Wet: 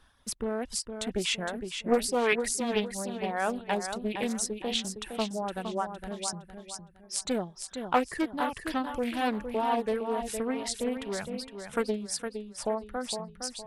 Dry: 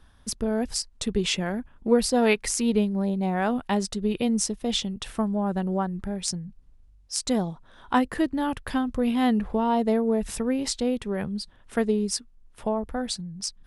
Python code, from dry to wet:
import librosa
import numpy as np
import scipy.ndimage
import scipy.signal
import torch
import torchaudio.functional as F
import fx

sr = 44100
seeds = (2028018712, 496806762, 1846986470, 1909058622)

y = fx.dynamic_eq(x, sr, hz=5300.0, q=1.3, threshold_db=-43.0, ratio=4.0, max_db=-6)
y = fx.dereverb_blind(y, sr, rt60_s=1.5)
y = fx.low_shelf(y, sr, hz=380.0, db=-9.5)
y = fx.echo_feedback(y, sr, ms=462, feedback_pct=34, wet_db=-7.5)
y = fx.doppler_dist(y, sr, depth_ms=0.34)